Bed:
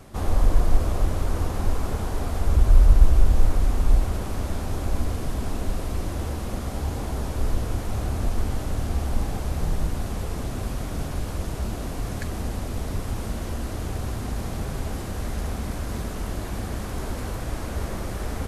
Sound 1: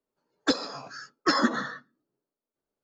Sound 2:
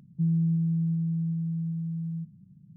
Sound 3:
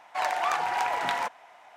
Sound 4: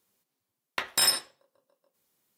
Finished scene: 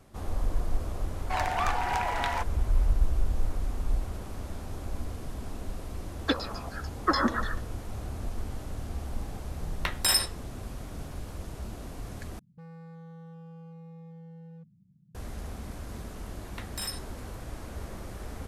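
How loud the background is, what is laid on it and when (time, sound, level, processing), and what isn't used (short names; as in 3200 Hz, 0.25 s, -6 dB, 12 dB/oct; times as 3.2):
bed -10 dB
1.15 add 3 -2 dB
5.81 add 1 -3.5 dB + LFO low-pass saw down 6.8 Hz 680–7000 Hz
9.07 add 4 -1 dB
12.39 replace with 2 -9 dB + hard clip -36.5 dBFS
15.8 add 4 -13 dB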